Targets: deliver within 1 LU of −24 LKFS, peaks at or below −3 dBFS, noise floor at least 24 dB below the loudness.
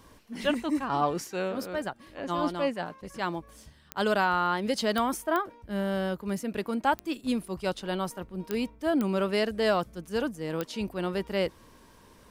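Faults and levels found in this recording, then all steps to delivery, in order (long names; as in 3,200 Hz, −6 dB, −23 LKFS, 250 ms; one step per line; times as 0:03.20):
number of clicks 7; integrated loudness −30.0 LKFS; sample peak −13.0 dBFS; target loudness −24.0 LKFS
→ click removal
level +6 dB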